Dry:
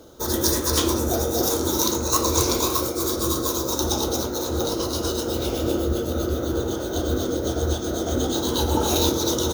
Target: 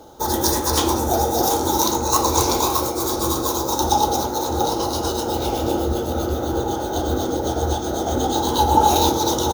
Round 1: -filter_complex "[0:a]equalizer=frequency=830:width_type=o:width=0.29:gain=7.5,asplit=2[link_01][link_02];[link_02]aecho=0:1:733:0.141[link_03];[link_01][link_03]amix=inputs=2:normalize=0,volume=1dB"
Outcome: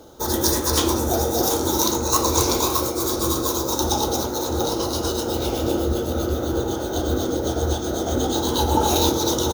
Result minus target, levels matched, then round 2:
1,000 Hz band −4.5 dB
-filter_complex "[0:a]equalizer=frequency=830:width_type=o:width=0.29:gain=17,asplit=2[link_01][link_02];[link_02]aecho=0:1:733:0.141[link_03];[link_01][link_03]amix=inputs=2:normalize=0,volume=1dB"

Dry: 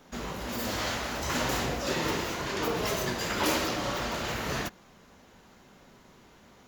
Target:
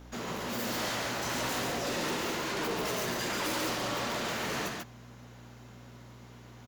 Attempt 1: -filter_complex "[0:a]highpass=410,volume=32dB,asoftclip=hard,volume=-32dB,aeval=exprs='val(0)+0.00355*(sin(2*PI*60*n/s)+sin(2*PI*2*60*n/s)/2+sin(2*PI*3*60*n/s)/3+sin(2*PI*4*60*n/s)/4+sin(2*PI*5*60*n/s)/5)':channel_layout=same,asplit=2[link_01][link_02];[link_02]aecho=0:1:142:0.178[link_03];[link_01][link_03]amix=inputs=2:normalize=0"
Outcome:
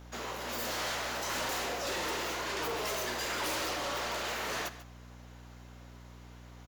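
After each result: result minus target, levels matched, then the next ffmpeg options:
echo-to-direct −11.5 dB; 125 Hz band −4.0 dB
-filter_complex "[0:a]highpass=410,volume=32dB,asoftclip=hard,volume=-32dB,aeval=exprs='val(0)+0.00355*(sin(2*PI*60*n/s)+sin(2*PI*2*60*n/s)/2+sin(2*PI*3*60*n/s)/3+sin(2*PI*4*60*n/s)/4+sin(2*PI*5*60*n/s)/5)':channel_layout=same,asplit=2[link_01][link_02];[link_02]aecho=0:1:142:0.668[link_03];[link_01][link_03]amix=inputs=2:normalize=0"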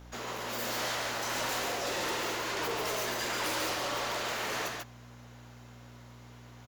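125 Hz band −4.0 dB
-filter_complex "[0:a]highpass=150,volume=32dB,asoftclip=hard,volume=-32dB,aeval=exprs='val(0)+0.00355*(sin(2*PI*60*n/s)+sin(2*PI*2*60*n/s)/2+sin(2*PI*3*60*n/s)/3+sin(2*PI*4*60*n/s)/4+sin(2*PI*5*60*n/s)/5)':channel_layout=same,asplit=2[link_01][link_02];[link_02]aecho=0:1:142:0.668[link_03];[link_01][link_03]amix=inputs=2:normalize=0"

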